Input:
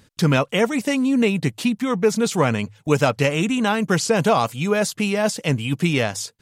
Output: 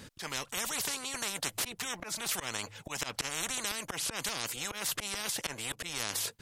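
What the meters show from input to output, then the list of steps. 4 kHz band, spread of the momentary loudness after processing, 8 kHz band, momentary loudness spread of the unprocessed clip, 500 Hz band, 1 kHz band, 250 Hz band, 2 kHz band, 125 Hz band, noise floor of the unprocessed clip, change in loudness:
-6.0 dB, 5 LU, -3.0 dB, 4 LU, -24.5 dB, -16.5 dB, -27.0 dB, -12.5 dB, -26.5 dB, -57 dBFS, -14.0 dB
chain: auto swell 0.194 s; random-step tremolo 3.5 Hz, depth 55%; spectral compressor 10:1; gain -9 dB

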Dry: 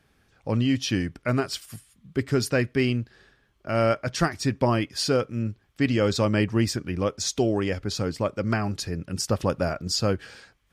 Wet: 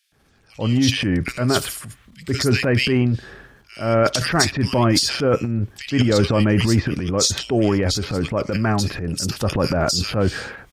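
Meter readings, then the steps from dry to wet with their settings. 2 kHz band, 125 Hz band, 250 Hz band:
+6.5 dB, +6.5 dB, +5.5 dB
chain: bands offset in time highs, lows 0.12 s, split 2500 Hz; transient shaper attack -5 dB, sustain +11 dB; gain +5.5 dB

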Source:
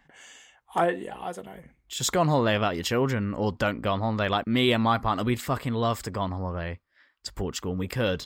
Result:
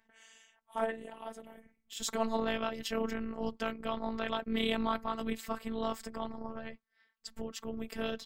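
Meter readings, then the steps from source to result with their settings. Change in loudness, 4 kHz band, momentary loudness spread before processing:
-9.5 dB, -9.5 dB, 14 LU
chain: AM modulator 160 Hz, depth 80%; robotiser 224 Hz; gain -3.5 dB

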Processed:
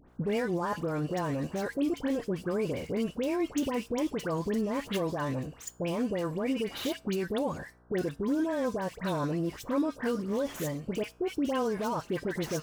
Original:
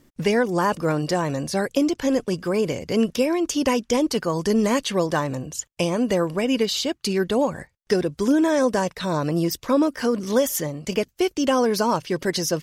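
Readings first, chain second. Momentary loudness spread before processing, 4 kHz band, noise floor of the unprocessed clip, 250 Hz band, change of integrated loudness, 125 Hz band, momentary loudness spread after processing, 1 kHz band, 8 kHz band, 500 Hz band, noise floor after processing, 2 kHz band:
5 LU, -13.0 dB, -64 dBFS, -8.5 dB, -9.5 dB, -7.0 dB, 4 LU, -10.0 dB, -14.5 dB, -9.5 dB, -55 dBFS, -9.5 dB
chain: median filter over 9 samples; limiter -19 dBFS, peak gain reduction 10.5 dB; resonator 93 Hz, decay 0.36 s, harmonics odd, mix 40%; buzz 60 Hz, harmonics 27, -61 dBFS -4 dB/oct; dispersion highs, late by 86 ms, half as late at 1600 Hz

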